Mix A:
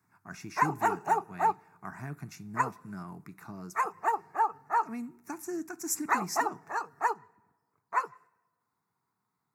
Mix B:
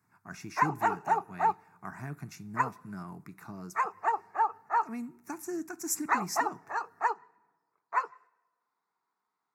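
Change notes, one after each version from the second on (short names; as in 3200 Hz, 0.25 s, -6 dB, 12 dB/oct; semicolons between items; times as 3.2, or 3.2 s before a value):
background: add BPF 410–5400 Hz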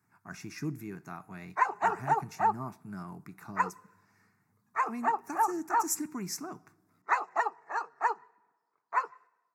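background: entry +1.00 s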